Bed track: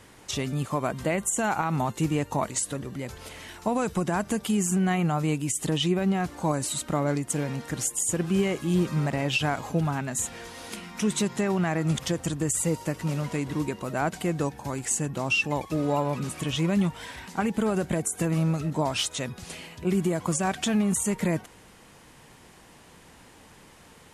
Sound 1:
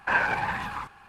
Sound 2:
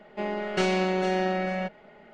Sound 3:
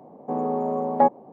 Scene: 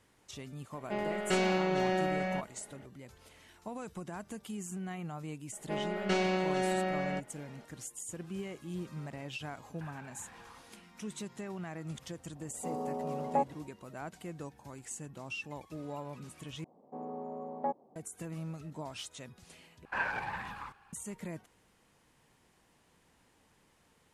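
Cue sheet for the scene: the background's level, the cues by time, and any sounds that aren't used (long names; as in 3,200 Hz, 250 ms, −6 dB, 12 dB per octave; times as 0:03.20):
bed track −16 dB
0:00.73: mix in 2 −4.5 dB
0:05.52: mix in 2 −5.5 dB
0:09.74: mix in 1 −14 dB + downward compressor, threshold −37 dBFS
0:12.35: mix in 3 −11.5 dB
0:16.64: overwrite with 3 −16 dB
0:19.85: overwrite with 1 −10 dB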